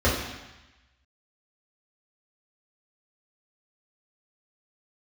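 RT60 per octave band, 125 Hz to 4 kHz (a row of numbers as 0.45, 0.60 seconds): 1.1, 1.0, 0.95, 1.1, 1.2, 1.2 seconds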